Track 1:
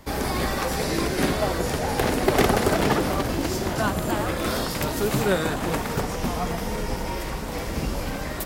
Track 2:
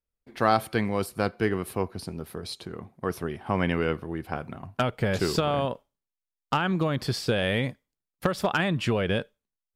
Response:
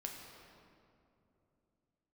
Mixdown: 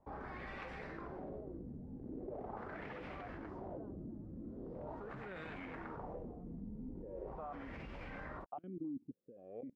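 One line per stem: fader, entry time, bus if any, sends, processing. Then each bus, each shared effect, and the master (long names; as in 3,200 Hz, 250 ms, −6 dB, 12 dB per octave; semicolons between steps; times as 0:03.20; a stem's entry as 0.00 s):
−13.5 dB, 0.00 s, no send, no processing
−5.0 dB, 2.00 s, no send, formant filter that steps through the vowels 3.8 Hz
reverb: not used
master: output level in coarse steps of 24 dB; auto-filter low-pass sine 0.41 Hz 230–2,400 Hz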